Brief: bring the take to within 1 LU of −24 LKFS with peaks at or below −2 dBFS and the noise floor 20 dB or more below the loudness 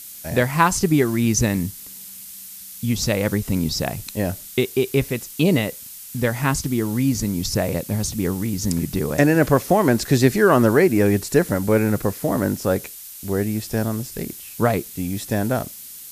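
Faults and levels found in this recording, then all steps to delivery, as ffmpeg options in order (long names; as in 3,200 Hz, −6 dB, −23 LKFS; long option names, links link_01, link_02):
background noise floor −38 dBFS; target noise floor −41 dBFS; integrated loudness −21.0 LKFS; sample peak −1.0 dBFS; target loudness −24.0 LKFS
→ -af "afftdn=noise_reduction=6:noise_floor=-38"
-af "volume=-3dB"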